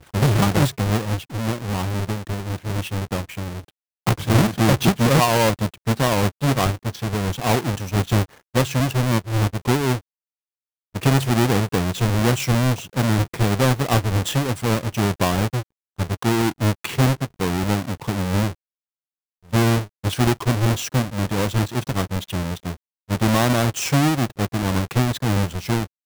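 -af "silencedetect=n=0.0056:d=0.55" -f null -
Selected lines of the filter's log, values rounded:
silence_start: 10.00
silence_end: 10.94 | silence_duration: 0.94
silence_start: 18.53
silence_end: 19.45 | silence_duration: 0.91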